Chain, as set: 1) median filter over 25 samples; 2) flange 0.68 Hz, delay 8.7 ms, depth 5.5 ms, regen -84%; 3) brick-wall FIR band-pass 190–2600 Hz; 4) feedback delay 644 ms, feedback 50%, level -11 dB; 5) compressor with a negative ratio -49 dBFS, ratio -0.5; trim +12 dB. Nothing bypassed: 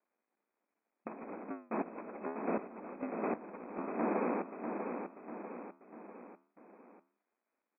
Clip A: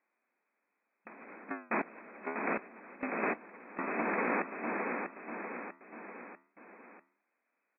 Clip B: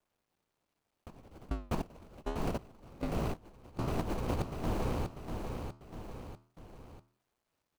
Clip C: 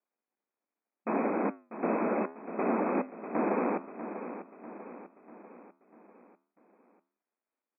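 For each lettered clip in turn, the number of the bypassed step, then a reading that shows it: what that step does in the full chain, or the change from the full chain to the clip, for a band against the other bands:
1, 2 kHz band +12.5 dB; 3, 125 Hz band +18.0 dB; 5, loudness change +7.0 LU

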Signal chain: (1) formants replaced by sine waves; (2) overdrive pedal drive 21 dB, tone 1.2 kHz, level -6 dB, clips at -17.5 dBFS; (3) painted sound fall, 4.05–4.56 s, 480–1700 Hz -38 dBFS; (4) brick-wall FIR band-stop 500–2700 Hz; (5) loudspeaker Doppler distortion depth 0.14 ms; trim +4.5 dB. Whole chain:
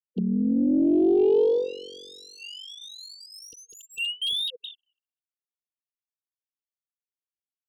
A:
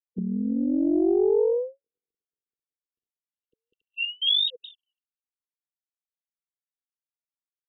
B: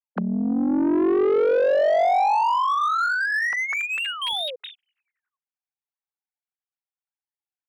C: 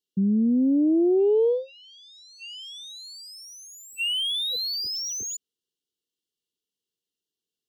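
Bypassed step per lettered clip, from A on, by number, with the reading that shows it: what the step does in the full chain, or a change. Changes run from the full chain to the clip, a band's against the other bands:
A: 2, 4 kHz band +5.0 dB; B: 4, 1 kHz band +26.5 dB; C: 1, 8 kHz band +11.5 dB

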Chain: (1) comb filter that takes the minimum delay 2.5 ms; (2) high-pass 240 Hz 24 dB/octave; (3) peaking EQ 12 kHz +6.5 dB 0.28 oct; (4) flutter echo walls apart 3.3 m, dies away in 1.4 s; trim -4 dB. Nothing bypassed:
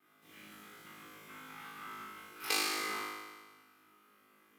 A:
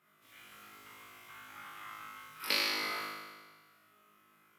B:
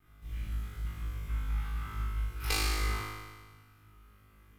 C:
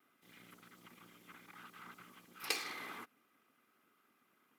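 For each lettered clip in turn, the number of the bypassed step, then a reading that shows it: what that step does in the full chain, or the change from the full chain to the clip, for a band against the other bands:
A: 1, 8 kHz band -5.0 dB; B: 2, 125 Hz band +29.0 dB; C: 4, echo-to-direct 7.0 dB to none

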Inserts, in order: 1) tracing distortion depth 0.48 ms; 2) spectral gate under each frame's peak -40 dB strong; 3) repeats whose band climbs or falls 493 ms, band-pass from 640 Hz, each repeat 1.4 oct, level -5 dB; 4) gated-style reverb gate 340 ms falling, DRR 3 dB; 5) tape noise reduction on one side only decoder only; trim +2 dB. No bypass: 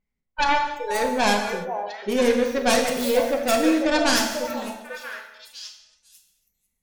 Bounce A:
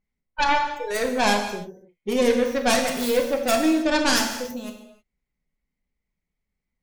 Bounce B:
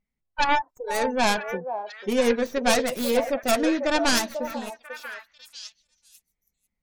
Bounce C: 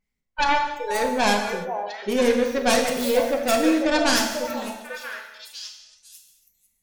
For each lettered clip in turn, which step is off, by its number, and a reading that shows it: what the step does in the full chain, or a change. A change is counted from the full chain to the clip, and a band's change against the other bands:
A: 3, momentary loudness spread change -3 LU; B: 4, loudness change -2.0 LU; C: 5, momentary loudness spread change -2 LU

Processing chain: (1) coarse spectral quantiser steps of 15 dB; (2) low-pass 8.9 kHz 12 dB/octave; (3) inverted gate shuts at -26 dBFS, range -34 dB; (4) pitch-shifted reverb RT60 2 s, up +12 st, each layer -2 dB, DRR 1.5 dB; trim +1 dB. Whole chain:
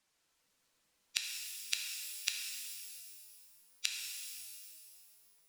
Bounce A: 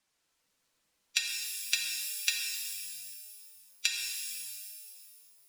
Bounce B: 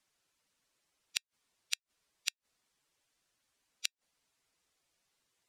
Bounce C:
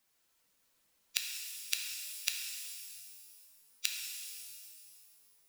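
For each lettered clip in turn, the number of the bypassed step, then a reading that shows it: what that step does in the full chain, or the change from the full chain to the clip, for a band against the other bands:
3, crest factor change -5.5 dB; 4, crest factor change +3.5 dB; 2, crest factor change +4.5 dB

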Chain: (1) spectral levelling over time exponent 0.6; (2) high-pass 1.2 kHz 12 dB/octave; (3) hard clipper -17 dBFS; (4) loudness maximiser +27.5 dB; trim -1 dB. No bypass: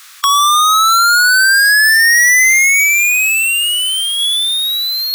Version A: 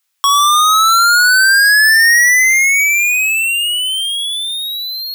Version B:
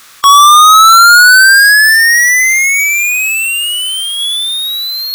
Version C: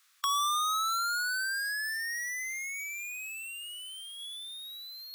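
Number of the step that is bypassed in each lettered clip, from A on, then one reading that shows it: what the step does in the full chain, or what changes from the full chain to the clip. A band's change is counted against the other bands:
1, 8 kHz band -2.0 dB; 2, 1 kHz band +5.5 dB; 4, crest factor change +7.0 dB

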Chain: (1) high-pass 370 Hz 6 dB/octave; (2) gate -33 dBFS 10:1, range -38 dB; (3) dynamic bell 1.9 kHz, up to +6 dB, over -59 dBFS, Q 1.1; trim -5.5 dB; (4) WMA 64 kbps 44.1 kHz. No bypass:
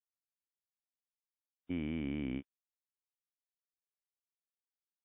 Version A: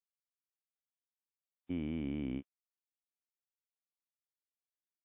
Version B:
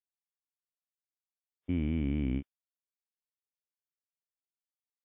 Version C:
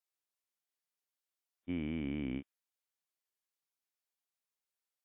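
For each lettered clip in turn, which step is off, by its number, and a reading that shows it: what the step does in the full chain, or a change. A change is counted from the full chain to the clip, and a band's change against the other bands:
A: 3, 2 kHz band -5.0 dB; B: 1, 125 Hz band +8.0 dB; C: 2, momentary loudness spread change +2 LU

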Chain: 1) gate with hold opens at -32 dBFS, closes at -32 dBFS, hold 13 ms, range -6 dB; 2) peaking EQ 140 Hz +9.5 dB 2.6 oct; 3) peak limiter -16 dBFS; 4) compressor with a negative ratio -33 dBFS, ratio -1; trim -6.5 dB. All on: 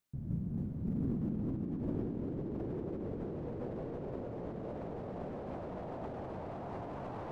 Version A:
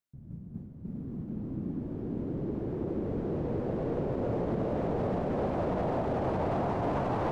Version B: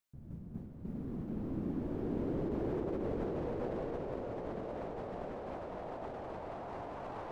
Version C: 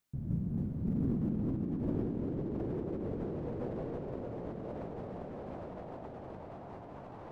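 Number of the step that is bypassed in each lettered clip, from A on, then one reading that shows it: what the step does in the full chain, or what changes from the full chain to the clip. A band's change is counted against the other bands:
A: 4, crest factor change -5.5 dB; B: 2, 125 Hz band -6.5 dB; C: 3, mean gain reduction 2.0 dB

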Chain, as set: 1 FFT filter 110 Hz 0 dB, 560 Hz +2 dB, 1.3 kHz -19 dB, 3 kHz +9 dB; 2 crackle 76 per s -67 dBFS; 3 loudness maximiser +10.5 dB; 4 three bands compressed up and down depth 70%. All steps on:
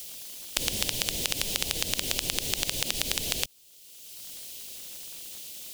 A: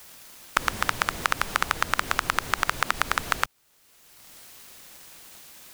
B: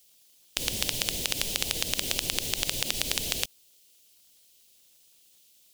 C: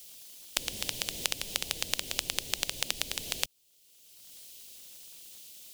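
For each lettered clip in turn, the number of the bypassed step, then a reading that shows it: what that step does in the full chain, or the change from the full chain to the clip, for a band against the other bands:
1, 1 kHz band +17.5 dB; 4, crest factor change +3.0 dB; 3, crest factor change +3.0 dB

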